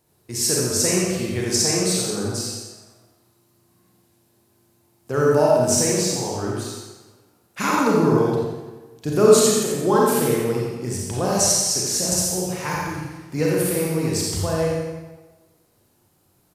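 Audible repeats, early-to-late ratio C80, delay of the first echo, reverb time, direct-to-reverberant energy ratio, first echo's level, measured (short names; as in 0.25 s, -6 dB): 1, 0.0 dB, 87 ms, 1.2 s, -4.5 dB, -5.5 dB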